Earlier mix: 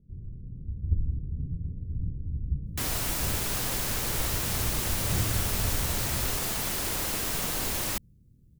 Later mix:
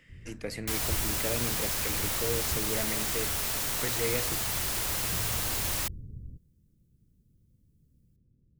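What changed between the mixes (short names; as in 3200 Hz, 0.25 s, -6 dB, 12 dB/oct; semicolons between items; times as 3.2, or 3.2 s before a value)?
speech: unmuted; second sound: entry -2.10 s; master: add low shelf 450 Hz -8 dB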